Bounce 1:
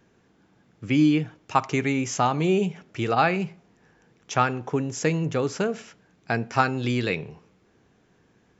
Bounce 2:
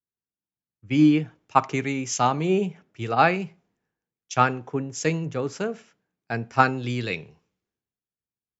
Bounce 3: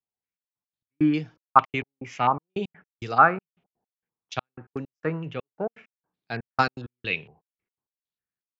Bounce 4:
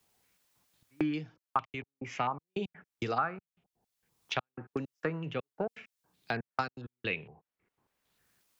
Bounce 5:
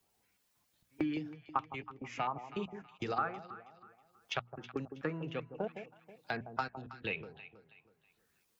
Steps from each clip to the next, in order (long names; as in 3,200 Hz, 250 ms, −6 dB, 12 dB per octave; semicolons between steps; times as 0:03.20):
multiband upward and downward expander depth 100%; level −2 dB
gate pattern "xxxx..x.x.." 164 BPM −60 dB; low-pass on a step sequencer 4.4 Hz 780–5,100 Hz; level −4.5 dB
multiband upward and downward compressor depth 100%; level −7.5 dB
spectral magnitudes quantised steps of 15 dB; mains-hum notches 60/120/180/240 Hz; delay that swaps between a low-pass and a high-pass 161 ms, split 890 Hz, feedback 57%, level −9.5 dB; level −3 dB